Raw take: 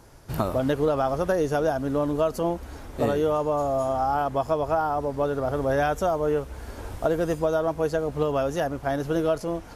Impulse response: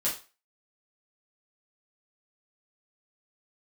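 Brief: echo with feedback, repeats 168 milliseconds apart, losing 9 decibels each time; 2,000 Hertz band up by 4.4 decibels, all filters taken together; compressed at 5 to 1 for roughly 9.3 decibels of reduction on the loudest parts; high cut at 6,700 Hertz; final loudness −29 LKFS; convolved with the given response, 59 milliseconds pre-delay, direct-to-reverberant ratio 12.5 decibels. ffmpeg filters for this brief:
-filter_complex "[0:a]lowpass=6700,equalizer=frequency=2000:width_type=o:gain=6.5,acompressor=threshold=-29dB:ratio=5,aecho=1:1:168|336|504|672:0.355|0.124|0.0435|0.0152,asplit=2[link_01][link_02];[1:a]atrim=start_sample=2205,adelay=59[link_03];[link_02][link_03]afir=irnorm=-1:irlink=0,volume=-19dB[link_04];[link_01][link_04]amix=inputs=2:normalize=0,volume=3dB"

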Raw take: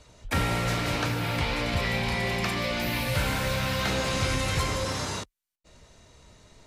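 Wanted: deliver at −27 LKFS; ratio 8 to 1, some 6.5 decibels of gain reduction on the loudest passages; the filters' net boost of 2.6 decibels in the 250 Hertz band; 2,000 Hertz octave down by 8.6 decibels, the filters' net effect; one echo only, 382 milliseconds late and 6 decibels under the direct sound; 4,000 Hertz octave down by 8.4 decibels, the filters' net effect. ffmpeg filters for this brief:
ffmpeg -i in.wav -af "equalizer=frequency=250:width_type=o:gain=3.5,equalizer=frequency=2000:width_type=o:gain=-8.5,equalizer=frequency=4000:width_type=o:gain=-8,acompressor=threshold=-29dB:ratio=8,aecho=1:1:382:0.501,volume=6.5dB" out.wav

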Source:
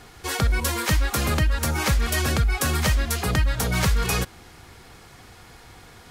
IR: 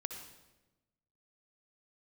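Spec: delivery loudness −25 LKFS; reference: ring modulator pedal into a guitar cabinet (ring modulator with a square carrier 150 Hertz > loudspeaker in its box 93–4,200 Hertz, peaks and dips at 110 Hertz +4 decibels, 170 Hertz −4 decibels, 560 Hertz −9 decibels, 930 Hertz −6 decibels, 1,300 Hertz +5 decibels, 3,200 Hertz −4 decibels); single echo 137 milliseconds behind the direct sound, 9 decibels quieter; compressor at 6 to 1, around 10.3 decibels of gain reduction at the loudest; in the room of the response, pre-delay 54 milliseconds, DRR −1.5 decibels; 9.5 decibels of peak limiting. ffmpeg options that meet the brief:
-filter_complex "[0:a]acompressor=threshold=-28dB:ratio=6,alimiter=level_in=1.5dB:limit=-24dB:level=0:latency=1,volume=-1.5dB,aecho=1:1:137:0.355,asplit=2[link_01][link_02];[1:a]atrim=start_sample=2205,adelay=54[link_03];[link_02][link_03]afir=irnorm=-1:irlink=0,volume=2.5dB[link_04];[link_01][link_04]amix=inputs=2:normalize=0,aeval=exprs='val(0)*sgn(sin(2*PI*150*n/s))':channel_layout=same,highpass=93,equalizer=frequency=110:width_type=q:width=4:gain=4,equalizer=frequency=170:width_type=q:width=4:gain=-4,equalizer=frequency=560:width_type=q:width=4:gain=-9,equalizer=frequency=930:width_type=q:width=4:gain=-6,equalizer=frequency=1300:width_type=q:width=4:gain=5,equalizer=frequency=3200:width_type=q:width=4:gain=-4,lowpass=frequency=4200:width=0.5412,lowpass=frequency=4200:width=1.3066,volume=6.5dB"

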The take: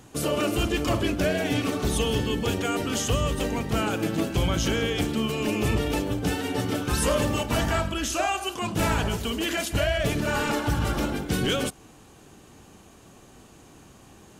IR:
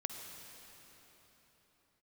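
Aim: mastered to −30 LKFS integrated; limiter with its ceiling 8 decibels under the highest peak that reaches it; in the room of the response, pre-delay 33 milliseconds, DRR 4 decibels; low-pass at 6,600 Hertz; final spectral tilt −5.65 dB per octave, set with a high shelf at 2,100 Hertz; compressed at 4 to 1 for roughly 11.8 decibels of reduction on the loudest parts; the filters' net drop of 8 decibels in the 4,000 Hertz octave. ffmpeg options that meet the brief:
-filter_complex "[0:a]lowpass=6600,highshelf=frequency=2100:gain=-3.5,equalizer=frequency=4000:width_type=o:gain=-8,acompressor=threshold=-35dB:ratio=4,alimiter=level_in=8dB:limit=-24dB:level=0:latency=1,volume=-8dB,asplit=2[link_01][link_02];[1:a]atrim=start_sample=2205,adelay=33[link_03];[link_02][link_03]afir=irnorm=-1:irlink=0,volume=-4dB[link_04];[link_01][link_04]amix=inputs=2:normalize=0,volume=9.5dB"

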